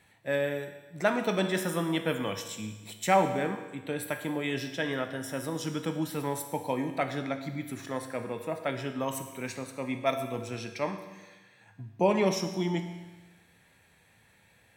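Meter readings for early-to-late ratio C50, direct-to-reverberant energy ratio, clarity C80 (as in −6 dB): 8.5 dB, 6.0 dB, 10.0 dB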